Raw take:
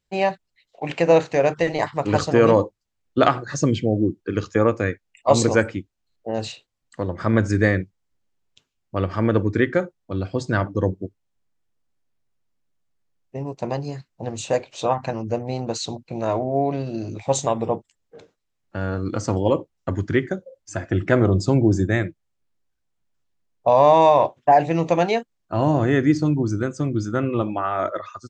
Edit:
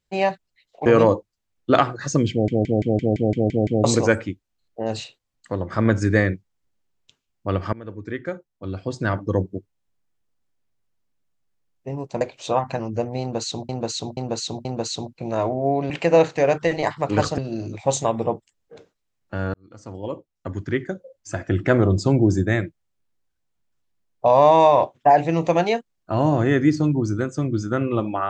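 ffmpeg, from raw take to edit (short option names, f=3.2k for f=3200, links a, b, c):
-filter_complex "[0:a]asplit=19[a][b][c][d][e][f][g][h][i][j][k][l][m][n][o][p][q][r][s];[a]atrim=end=0.862[t];[b]atrim=start=2.338:end=3.962[u];[c]atrim=start=3.788:end=3.962[v];[d]atrim=start=3.788:end=3.962[w];[e]atrim=start=3.788:end=3.962[x];[f]atrim=start=3.788:end=3.962[y];[g]atrim=start=3.788:end=3.962[z];[h]atrim=start=3.788:end=3.962[aa];[i]atrim=start=3.788:end=3.962[ab];[j]atrim=start=3.788:end=3.962[ac];[k]atrim=start=5.318:end=9.21,asetpts=PTS-STARTPTS,afade=t=out:st=3.888:d=0.004:c=hsin:silence=0.0668344[ad];[l]atrim=start=9.21:end=13.692,asetpts=PTS-STARTPTS,afade=t=in:d=1.66:silence=0.0668344[ae];[m]atrim=start=14.548:end=16.032[af];[n]atrim=start=15.548:end=16.032[ag];[o]atrim=start=15.548:end=16.032[ah];[p]atrim=start=15.548:end=16.802[ai];[q]atrim=start=0.858:end=2.342[aj];[r]atrim=start=16.798:end=18.96,asetpts=PTS-STARTPTS,afade=t=out:st=2.158:d=0.004:c=hsin[ak];[s]atrim=start=18.96,asetpts=PTS-STARTPTS,afade=t=in:d=1.83[al];[t][u]acrossfade=d=0.004:c1=hsin:c2=hsin[am];[am][v]acrossfade=d=0.004:c1=hsin:c2=hsin[an];[an][w]acrossfade=d=0.004:c1=hsin:c2=hsin[ao];[ao][x]acrossfade=d=0.004:c1=hsin:c2=hsin[ap];[ap][y]acrossfade=d=0.004:c1=hsin:c2=hsin[aq];[aq][z]acrossfade=d=0.004:c1=hsin:c2=hsin[ar];[ar][aa]acrossfade=d=0.004:c1=hsin:c2=hsin[as];[as][ab]acrossfade=d=0.004:c1=hsin:c2=hsin[at];[at][ac]acrossfade=d=0.004:c1=hsin:c2=hsin[au];[ad][ae]concat=n=2:v=0:a=1[av];[au][av]acrossfade=d=0.004:c1=hsin:c2=hsin[aw];[aw][af]acrossfade=d=0.004:c1=hsin:c2=hsin[ax];[ax][ag]acrossfade=d=0.004:c1=hsin:c2=hsin[ay];[ay][ah]acrossfade=d=0.004:c1=hsin:c2=hsin[az];[az][ai]acrossfade=d=0.004:c1=hsin:c2=hsin[ba];[ba][aj]acrossfade=d=0.004:c1=hsin:c2=hsin[bb];[ak][al]concat=n=2:v=0:a=1[bc];[bb][bc]acrossfade=d=0.004:c1=hsin:c2=hsin"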